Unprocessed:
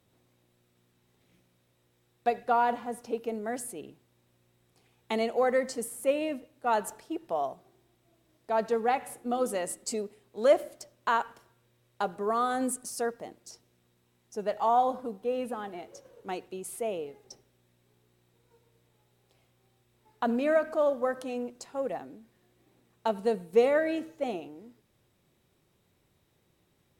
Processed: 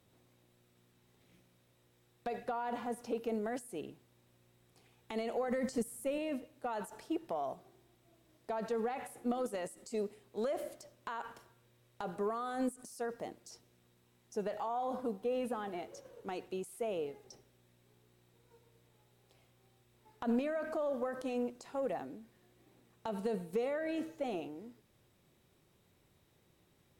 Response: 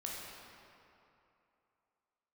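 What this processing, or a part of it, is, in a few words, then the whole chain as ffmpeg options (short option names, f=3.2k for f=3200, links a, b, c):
de-esser from a sidechain: -filter_complex "[0:a]asplit=2[a][b];[b]highpass=f=5.8k:p=1,apad=whole_len=1190435[c];[a][c]sidechaincompress=threshold=-51dB:ratio=8:attack=2.9:release=38,asettb=1/sr,asplit=3[d][e][f];[d]atrim=end=5.484[g];[e]atrim=start=5.48:end=6.18,asetpts=PTS-STARTPTS,afade=t=in:d=0.004:c=qsin,afade=t=out:st=0.696:d=0.004:c=qsin,bass=f=250:g=10,treble=f=4k:g=4[h];[f]atrim=start=6.176[i];[g][h]acrossfade=d=0.004:c1=hsin:c2=qsin[j];[j][i]acrossfade=d=0.004:c1=qsin:c2=hsin"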